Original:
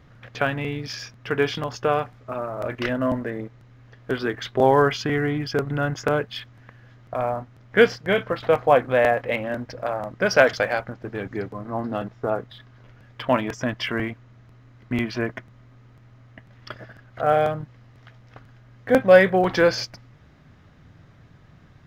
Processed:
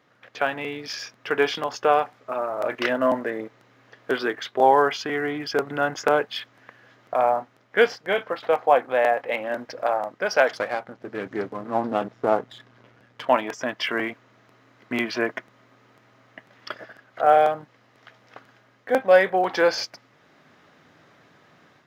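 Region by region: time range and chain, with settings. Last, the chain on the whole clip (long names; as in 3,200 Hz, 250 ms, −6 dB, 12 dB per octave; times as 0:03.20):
0:10.54–0:13.26: gain on one half-wave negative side −7 dB + low-shelf EQ 250 Hz +10.5 dB + highs frequency-modulated by the lows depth 0.18 ms
whole clip: high-pass filter 340 Hz 12 dB per octave; dynamic equaliser 820 Hz, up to +6 dB, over −37 dBFS, Q 3.3; automatic gain control gain up to 7.5 dB; level −3.5 dB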